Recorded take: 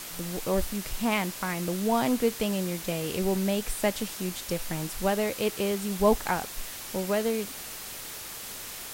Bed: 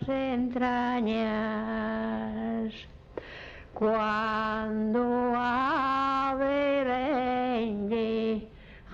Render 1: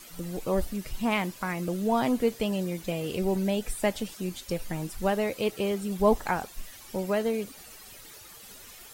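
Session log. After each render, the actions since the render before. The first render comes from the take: noise reduction 12 dB, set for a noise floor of -40 dBFS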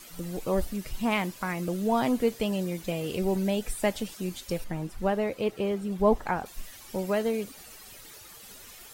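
4.64–6.46 s: treble shelf 3.4 kHz -11 dB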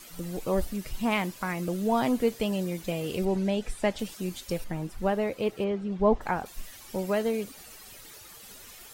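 3.25–3.99 s: distance through air 56 m; 5.64–6.21 s: distance through air 130 m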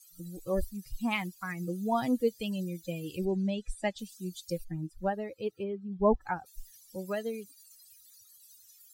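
expander on every frequency bin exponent 2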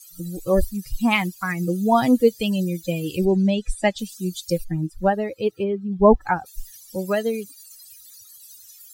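trim +11.5 dB; peak limiter -2 dBFS, peak gain reduction 1 dB

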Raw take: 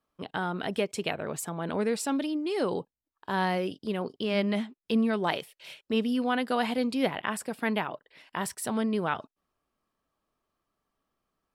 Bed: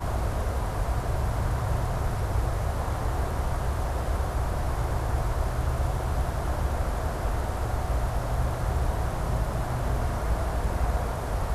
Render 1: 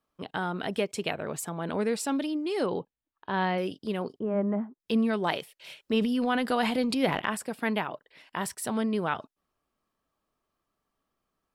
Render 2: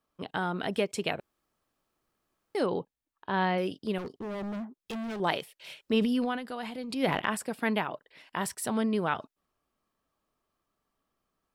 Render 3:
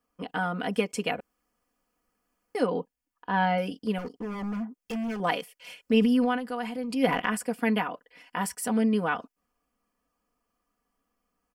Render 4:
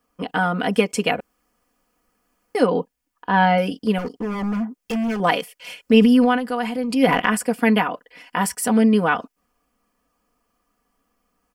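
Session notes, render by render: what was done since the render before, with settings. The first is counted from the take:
2.66–3.58 s: low-pass 3.9 kHz 24 dB/octave; 4.19–4.80 s: low-pass 1.3 kHz 24 dB/octave; 5.77–7.35 s: transient shaper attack +2 dB, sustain +8 dB
1.20–2.55 s: room tone; 3.98–5.20 s: hard clipper -34 dBFS; 6.17–7.11 s: dip -11 dB, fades 0.24 s
peaking EQ 3.8 kHz -14.5 dB 0.2 oct; comb 4.1 ms, depth 83%
trim +8.5 dB; peak limiter -3 dBFS, peak gain reduction 2.5 dB

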